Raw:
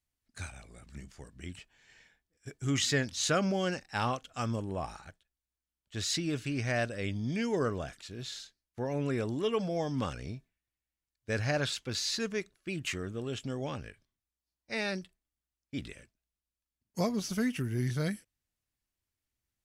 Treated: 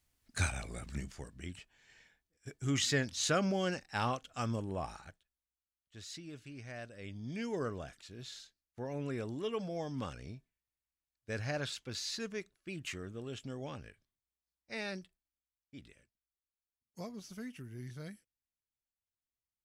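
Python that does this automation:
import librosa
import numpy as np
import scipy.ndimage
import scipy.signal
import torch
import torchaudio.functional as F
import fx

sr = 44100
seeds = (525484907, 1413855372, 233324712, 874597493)

y = fx.gain(x, sr, db=fx.line((0.77, 9.0), (1.54, -2.5), (5.07, -2.5), (6.03, -15.0), (6.82, -15.0), (7.43, -6.5), (15.0, -6.5), (15.77, -14.0)))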